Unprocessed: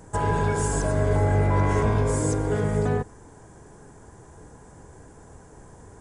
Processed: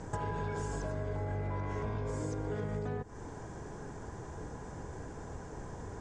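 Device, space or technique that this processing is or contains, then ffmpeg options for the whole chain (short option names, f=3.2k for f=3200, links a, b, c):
serial compression, peaks first: -af "acompressor=threshold=-31dB:ratio=6,acompressor=threshold=-39dB:ratio=2.5,lowpass=f=6.5k:w=0.5412,lowpass=f=6.5k:w=1.3066,volume=3.5dB"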